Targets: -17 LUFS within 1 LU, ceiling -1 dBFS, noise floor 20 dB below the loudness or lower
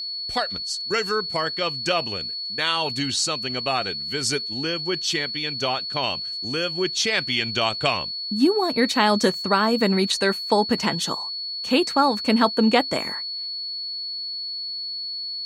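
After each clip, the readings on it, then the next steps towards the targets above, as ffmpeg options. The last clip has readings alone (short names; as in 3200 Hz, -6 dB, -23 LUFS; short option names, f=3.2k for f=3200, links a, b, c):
steady tone 4400 Hz; tone level -28 dBFS; loudness -23.0 LUFS; peak -4.0 dBFS; loudness target -17.0 LUFS
-> -af "bandreject=f=4.4k:w=30"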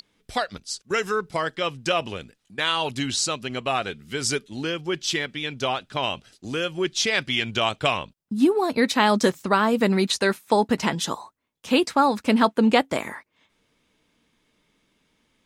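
steady tone none; loudness -23.5 LUFS; peak -4.0 dBFS; loudness target -17.0 LUFS
-> -af "volume=6.5dB,alimiter=limit=-1dB:level=0:latency=1"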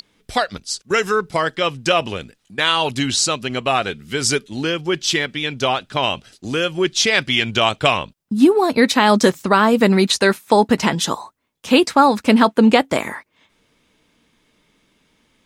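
loudness -17.5 LUFS; peak -1.0 dBFS; noise floor -65 dBFS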